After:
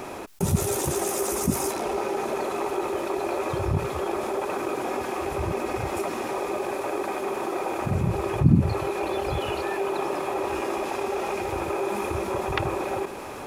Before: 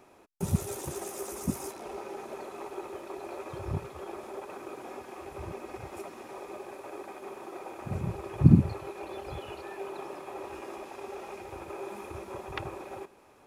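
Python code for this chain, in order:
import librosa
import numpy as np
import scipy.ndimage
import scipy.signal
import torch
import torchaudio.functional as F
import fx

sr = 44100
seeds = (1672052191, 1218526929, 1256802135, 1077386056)

y = fx.env_flatten(x, sr, amount_pct=50)
y = F.gain(torch.from_numpy(y), -1.0).numpy()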